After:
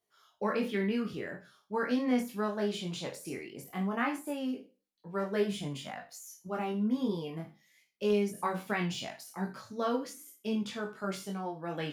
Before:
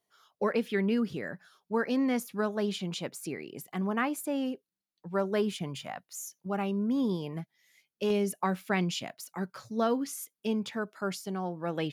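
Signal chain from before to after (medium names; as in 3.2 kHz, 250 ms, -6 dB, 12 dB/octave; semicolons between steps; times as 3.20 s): spectral sustain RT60 0.33 s; de-esser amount 85%; chorus voices 4, 0.18 Hz, delay 22 ms, depth 2.5 ms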